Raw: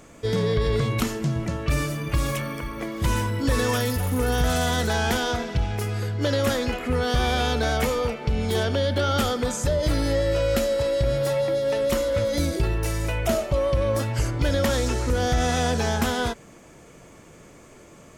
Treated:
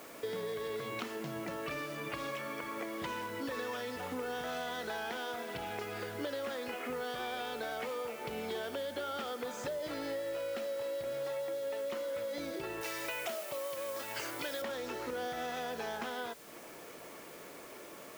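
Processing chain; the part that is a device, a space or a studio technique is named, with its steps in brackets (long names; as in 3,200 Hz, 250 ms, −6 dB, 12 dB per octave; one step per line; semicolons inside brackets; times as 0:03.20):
baby monitor (band-pass filter 350–3,700 Hz; downward compressor, threshold −38 dBFS, peak gain reduction 15.5 dB; white noise bed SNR 17 dB)
0:12.81–0:14.62: spectral tilt +2.5 dB per octave
level +1 dB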